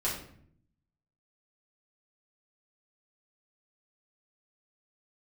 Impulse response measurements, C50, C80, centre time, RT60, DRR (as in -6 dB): 4.5 dB, 8.5 dB, 39 ms, 0.60 s, -7.0 dB